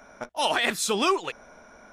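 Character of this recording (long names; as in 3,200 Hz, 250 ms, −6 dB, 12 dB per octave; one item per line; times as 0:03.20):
background noise floor −52 dBFS
spectral slope −1.5 dB per octave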